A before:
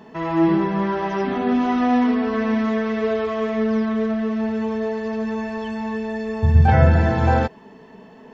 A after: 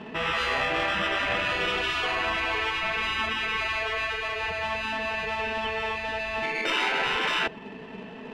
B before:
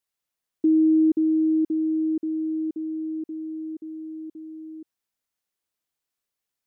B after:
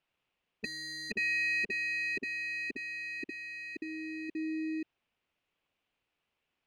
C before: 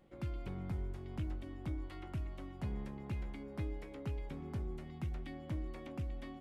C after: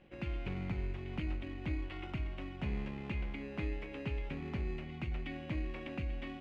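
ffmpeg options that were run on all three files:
-filter_complex "[0:a]asplit=2[a][b];[b]acrusher=samples=20:mix=1:aa=0.000001,volume=-5dB[c];[a][c]amix=inputs=2:normalize=0,lowpass=f=2.6k:t=q:w=2.8,aemphasis=mode=production:type=cd,afftfilt=real='re*lt(hypot(re,im),0.282)':imag='im*lt(hypot(re,im),0.282)':win_size=1024:overlap=0.75"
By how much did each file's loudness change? -6.0, -10.5, +3.0 LU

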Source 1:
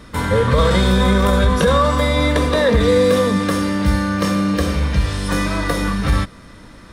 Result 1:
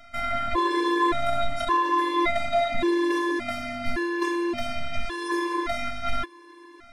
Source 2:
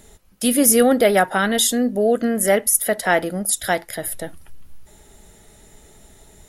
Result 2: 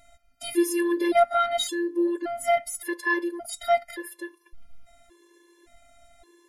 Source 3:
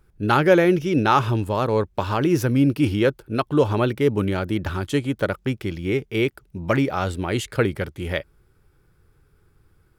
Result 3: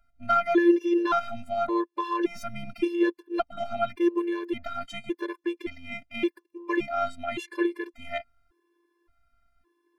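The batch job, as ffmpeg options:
-filter_complex "[0:a]asplit=2[a][b];[b]highpass=f=720:p=1,volume=11dB,asoftclip=type=tanh:threshold=-1dB[c];[a][c]amix=inputs=2:normalize=0,lowpass=f=1.5k:p=1,volume=-6dB,afftfilt=real='hypot(re,im)*cos(PI*b)':imag='0':win_size=512:overlap=0.75,afftfilt=real='re*gt(sin(2*PI*0.88*pts/sr)*(1-2*mod(floor(b*sr/1024/300),2)),0)':imag='im*gt(sin(2*PI*0.88*pts/sr)*(1-2*mod(floor(b*sr/1024/300),2)),0)':win_size=1024:overlap=0.75"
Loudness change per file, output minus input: -9.0, -7.5, -6.0 LU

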